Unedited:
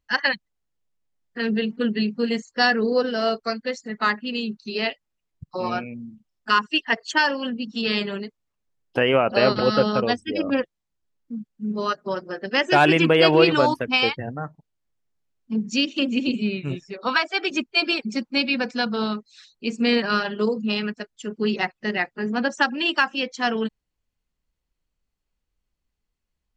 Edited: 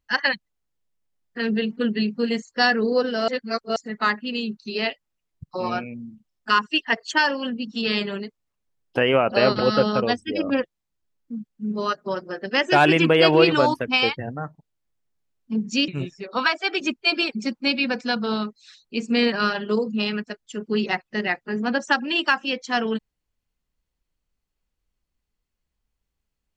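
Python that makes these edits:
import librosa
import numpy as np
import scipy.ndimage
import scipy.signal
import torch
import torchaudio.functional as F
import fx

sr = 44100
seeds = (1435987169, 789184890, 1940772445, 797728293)

y = fx.edit(x, sr, fx.reverse_span(start_s=3.28, length_s=0.48),
    fx.cut(start_s=15.88, length_s=0.7), tone=tone)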